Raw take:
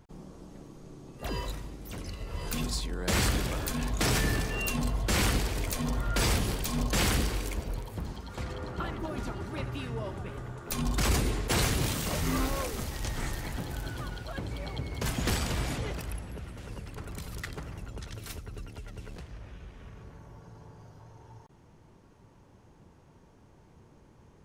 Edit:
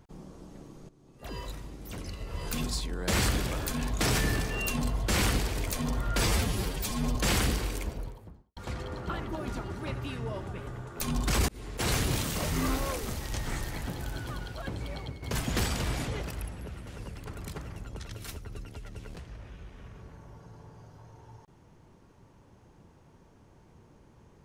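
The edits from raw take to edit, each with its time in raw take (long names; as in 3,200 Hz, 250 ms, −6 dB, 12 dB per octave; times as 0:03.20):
0:00.89–0:01.85: fade in, from −16 dB
0:06.27–0:06.86: time-stretch 1.5×
0:07.44–0:08.27: fade out and dull
0:11.19–0:11.69: fade in
0:14.53–0:14.93: fade out equal-power, to −10 dB
0:17.23–0:17.54: remove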